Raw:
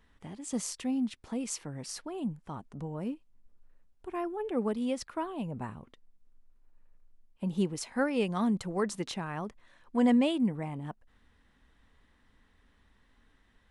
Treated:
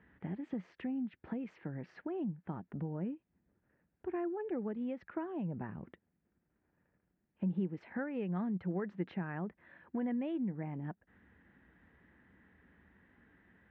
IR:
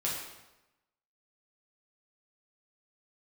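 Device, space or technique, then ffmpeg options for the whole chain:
bass amplifier: -af "acompressor=threshold=-43dB:ratio=3,highpass=f=65:w=0.5412,highpass=f=65:w=1.3066,equalizer=f=180:t=q:w=4:g=8,equalizer=f=340:t=q:w=4:g=6,equalizer=f=1.1k:t=q:w=4:g=-6,equalizer=f=1.7k:t=q:w=4:g=5,lowpass=f=2.3k:w=0.5412,lowpass=f=2.3k:w=1.3066,volume=2dB"

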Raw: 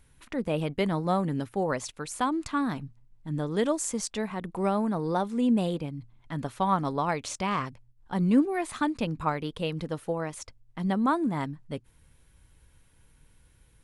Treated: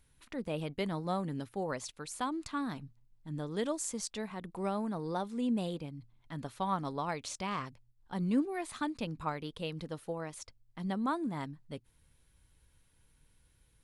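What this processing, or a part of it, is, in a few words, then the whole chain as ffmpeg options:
presence and air boost: -af "equalizer=f=4.2k:t=o:w=0.85:g=4,highshelf=f=9.9k:g=5,volume=-8dB"

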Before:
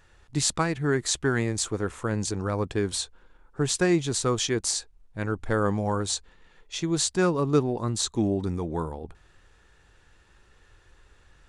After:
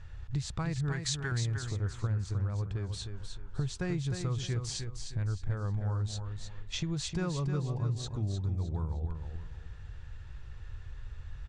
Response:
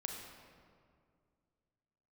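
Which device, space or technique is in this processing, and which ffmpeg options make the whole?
jukebox: -filter_complex "[0:a]asettb=1/sr,asplit=3[a][b][c];[a]atrim=end=0.924[d];[b]atrim=start=0.92:end=1.32,asetpts=PTS-STARTPTS,afade=t=in:d=0.004:c=qsin,afade=t=out:st=0.396:d=0.004:c=qsin,tiltshelf=f=820:g=-8.5[e];[c]atrim=start=1.316[f];[d][e]acrossfade=d=0.004:c1=hsin:c2=qsin[g];[g][f]acrossfade=d=0.004:c1=qsin:c2=hsin,lowpass=5.8k,lowshelf=f=170:t=q:w=1.5:g=14,acompressor=threshold=-32dB:ratio=6,aecho=1:1:308|616|924|1232:0.447|0.143|0.0457|0.0146"

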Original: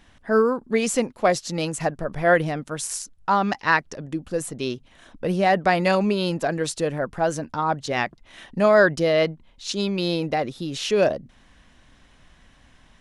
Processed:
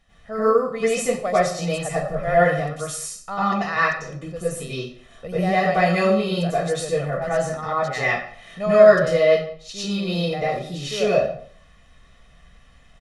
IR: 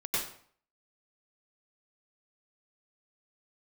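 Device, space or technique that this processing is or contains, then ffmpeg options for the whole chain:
microphone above a desk: -filter_complex "[0:a]asettb=1/sr,asplit=3[a][b][c];[a]atrim=end=7.054[d];[b]atrim=start=7.05:end=7.98,asetpts=PTS-STARTPTS,afade=t=in:d=0.004:c=qsin,afade=t=out:st=0.926:d=0.004:c=qsin,equalizer=f=1.9k:t=o:w=0.36:g=10.5[e];[c]atrim=start=7.976[f];[d][e]acrossfade=d=0.004:c1=hsin:c2=qsin[g];[g][f]acrossfade=d=0.004:c1=qsin:c2=hsin,aecho=1:1:1.6:0.67[h];[1:a]atrim=start_sample=2205[i];[h][i]afir=irnorm=-1:irlink=0,volume=-7dB"

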